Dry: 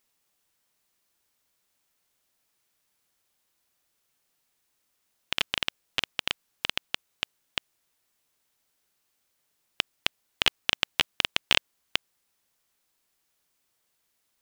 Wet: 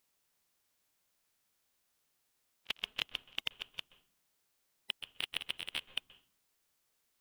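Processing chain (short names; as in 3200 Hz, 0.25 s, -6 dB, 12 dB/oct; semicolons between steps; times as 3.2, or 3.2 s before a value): hard clip -6.5 dBFS, distortion -13 dB; reverse; compressor 10:1, threshold -35 dBFS, peak gain reduction 18 dB; reverse; limiter -25.5 dBFS, peak gain reduction 7.5 dB; level quantiser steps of 23 dB; time stretch by phase-locked vocoder 0.5×; on a send: tape spacing loss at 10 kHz 34 dB + reverb RT60 0.45 s, pre-delay 0.123 s, DRR 19.5 dB; on the sum: gain +15.5 dB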